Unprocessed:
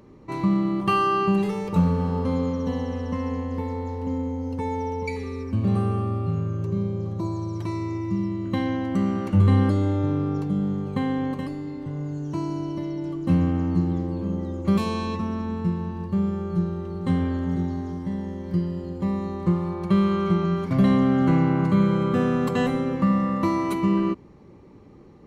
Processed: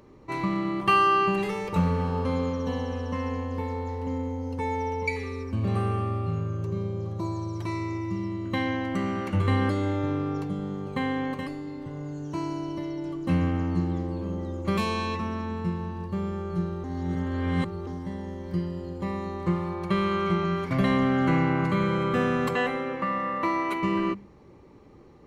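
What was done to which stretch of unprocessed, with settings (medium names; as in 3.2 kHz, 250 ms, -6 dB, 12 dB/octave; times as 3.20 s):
2.02–3.89 s: band-stop 2 kHz
16.84–17.87 s: reverse
22.55–23.83 s: tone controls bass -11 dB, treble -9 dB
whole clip: peaking EQ 200 Hz -5 dB 1.6 oct; hum notches 50/100/150/200 Hz; dynamic bell 2.1 kHz, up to +6 dB, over -47 dBFS, Q 1.3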